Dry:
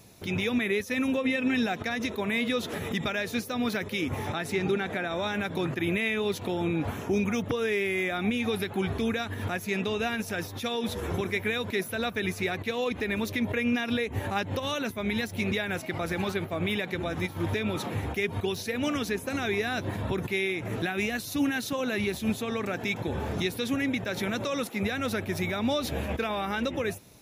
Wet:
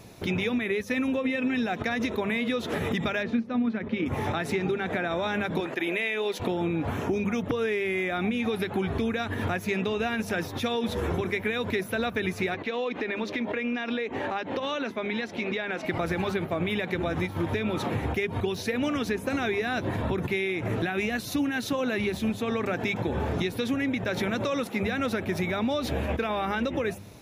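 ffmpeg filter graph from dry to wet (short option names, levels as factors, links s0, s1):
-filter_complex "[0:a]asettb=1/sr,asplit=3[s0][s1][s2];[s0]atrim=end=3.234[s3];[s1]atrim=start=3.23:end=4.06,asetpts=PTS-STARTPTS,afade=t=in:d=0.004:c=qsin,afade=t=out:st=0.826:d=0.004:c=qsin,lowpass=2700,equalizer=f=230:t=o:w=0.29:g=13,tremolo=f=31:d=0.261[s4];[s2]atrim=start=4.056[s5];[s3][s4]acrossfade=d=0.004:c1=hsin:c2=qsin[s6];[s6][s5]acrossfade=d=0.004:c1=qsin:c2=hsin,asettb=1/sr,asplit=3[s7][s8][s9];[s7]atrim=end=5.604[s10];[s8]atrim=start=5.6:end=6.4,asetpts=PTS-STARTPTS,afade=t=in:d=0.004:c=qsin,afade=t=out:st=0.796:d=0.004:c=qsin,highpass=420,equalizer=f=1200:w=2.8:g=-5[s11];[s9]atrim=start=6.396[s12];[s10][s11]acrossfade=d=0.004:c1=hsin:c2=qsin[s13];[s13][s12]acrossfade=d=0.004:c1=qsin:c2=hsin,asettb=1/sr,asplit=3[s14][s15][s16];[s14]atrim=end=12.544[s17];[s15]atrim=start=12.54:end=15.85,asetpts=PTS-STARTPTS,afade=t=in:d=0.004:c=qsin,afade=t=out:st=3.306:d=0.004:c=qsin,acrossover=split=200 6300:gain=0.0708 1 0.1[s18][s19][s20];[s18][s19][s20]amix=inputs=3:normalize=0,acompressor=threshold=0.0224:ratio=3:attack=3.2:release=140:knee=1:detection=peak[s21];[s16]atrim=start=15.846[s22];[s17][s21]acrossfade=d=0.004:c1=hsin:c2=qsin[s23];[s23][s22]acrossfade=d=0.004:c1=qsin:c2=hsin,highshelf=f=4500:g=-9.5,bandreject=f=50:t=h:w=6,bandreject=f=100:t=h:w=6,bandreject=f=150:t=h:w=6,bandreject=f=200:t=h:w=6,acompressor=threshold=0.0251:ratio=6,volume=2.37"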